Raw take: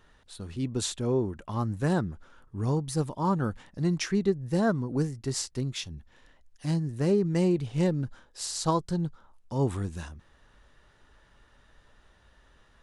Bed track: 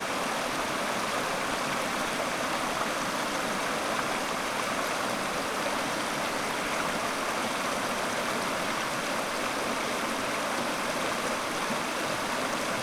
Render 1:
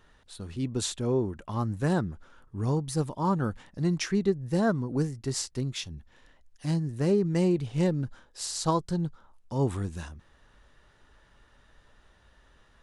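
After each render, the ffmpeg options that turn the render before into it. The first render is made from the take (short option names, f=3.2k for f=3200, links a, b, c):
-af anull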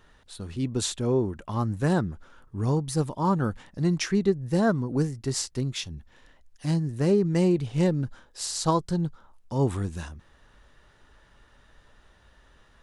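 -af "volume=2.5dB"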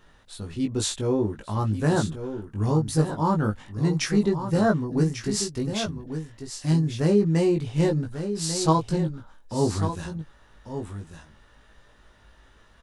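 -filter_complex "[0:a]asplit=2[a][b];[b]adelay=19,volume=-3dB[c];[a][c]amix=inputs=2:normalize=0,asplit=2[d][e];[e]aecho=0:1:1144:0.335[f];[d][f]amix=inputs=2:normalize=0"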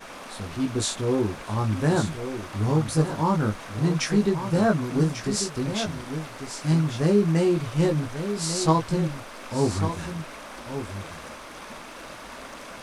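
-filter_complex "[1:a]volume=-10.5dB[a];[0:a][a]amix=inputs=2:normalize=0"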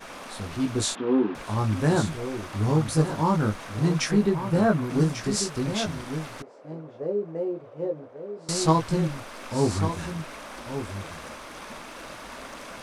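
-filter_complex "[0:a]asettb=1/sr,asplit=3[a][b][c];[a]atrim=end=0.954[d];[b]atrim=start=0.95:end=1.35,asetpts=PTS-STARTPTS,afade=t=in:d=0.004:c=qsin,afade=t=out:st=0.396:d=0.004:c=qsin,highpass=f=200:w=0.5412,highpass=f=200:w=1.3066,equalizer=f=270:t=q:w=4:g=6,equalizer=f=580:t=q:w=4:g=-7,equalizer=f=2.2k:t=q:w=4:g=-5,lowpass=f=3.1k:w=0.5412,lowpass=f=3.1k:w=1.3066[e];[c]atrim=start=1.346[f];[d][e]acrossfade=d=0.004:c1=hsin:c2=qsin[g];[g][f]acrossfade=d=0.004:c1=qsin:c2=hsin,asettb=1/sr,asplit=3[h][i][j];[h]atrim=end=4.114[k];[i]atrim=start=4.11:end=4.9,asetpts=PTS-STARTPTS,afade=t=in:d=0.004:c=qsin,afade=t=out:st=0.786:d=0.004:c=qsin,equalizer=f=6.2k:w=0.72:g=-6[l];[j]atrim=start=4.896[m];[k][l]acrossfade=d=0.004:c1=hsin:c2=qsin[n];[n][m]acrossfade=d=0.004:c1=qsin:c2=hsin,asettb=1/sr,asplit=3[o][p][q];[o]atrim=end=6.424[r];[p]atrim=start=6.42:end=8.49,asetpts=PTS-STARTPTS,afade=t=in:d=0.004:c=qsin,afade=t=out:st=2.066:d=0.004:c=qsin,bandpass=f=510:t=q:w=3.4[s];[q]atrim=start=8.486[t];[r][s]acrossfade=d=0.004:c1=hsin:c2=qsin[u];[u][t]acrossfade=d=0.004:c1=qsin:c2=hsin"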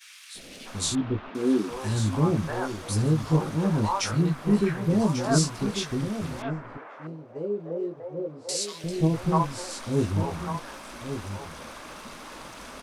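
-filter_complex "[0:a]acrossover=split=560|2000[a][b][c];[a]adelay=350[d];[b]adelay=650[e];[d][e][c]amix=inputs=3:normalize=0"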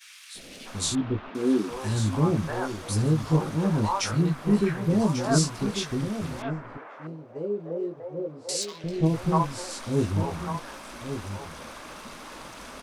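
-filter_complex "[0:a]asettb=1/sr,asplit=3[a][b][c];[a]atrim=end=8.624[d];[b]atrim=start=8.62:end=9.06,asetpts=PTS-STARTPTS,afade=t=in:d=0.004:c=qsin,afade=t=out:st=0.436:d=0.004:c=qsin,adynamicsmooth=sensitivity=7:basefreq=3.1k[e];[c]atrim=start=9.056[f];[d][e]acrossfade=d=0.004:c1=hsin:c2=qsin[g];[g][f]acrossfade=d=0.004:c1=qsin:c2=hsin"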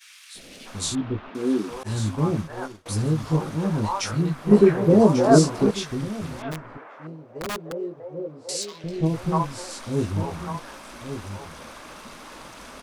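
-filter_complex "[0:a]asettb=1/sr,asplit=3[a][b][c];[a]atrim=end=1.834[d];[b]atrim=start=1.83:end=2.86,asetpts=PTS-STARTPTS,afade=t=in:d=0.004:c=qsin,afade=t=out:st=1.026:d=0.004:c=qsin,agate=range=-33dB:threshold=-26dB:ratio=3:release=100:detection=peak[e];[c]atrim=start=2.856[f];[d][e]acrossfade=d=0.004:c1=hsin:c2=qsin[g];[g][f]acrossfade=d=0.004:c1=qsin:c2=hsin,asettb=1/sr,asplit=3[h][i][j];[h]atrim=end=4.514[k];[i]atrim=start=4.51:end=5.71,asetpts=PTS-STARTPTS,afade=t=in:d=0.004:c=qsin,afade=t=out:st=1.196:d=0.004:c=qsin,equalizer=f=460:t=o:w=2.1:g=13[l];[j]atrim=start=5.706[m];[k][l]acrossfade=d=0.004:c1=hsin:c2=qsin[n];[n][m]acrossfade=d=0.004:c1=qsin:c2=hsin,asplit=3[o][p][q];[o]afade=t=out:st=6.51:d=0.02[r];[p]aeval=exprs='(mod(17.8*val(0)+1,2)-1)/17.8':c=same,afade=t=in:st=6.51:d=0.02,afade=t=out:st=7.71:d=0.02[s];[q]afade=t=in:st=7.71:d=0.02[t];[r][s][t]amix=inputs=3:normalize=0"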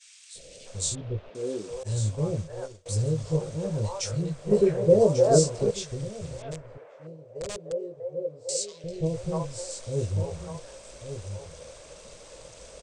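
-af "firequalizer=gain_entry='entry(120,0);entry(250,-18);entry(510,5);entry(760,-11);entry(1200,-16);entry(2400,-9);entry(8200,4);entry(12000,-29)':delay=0.05:min_phase=1"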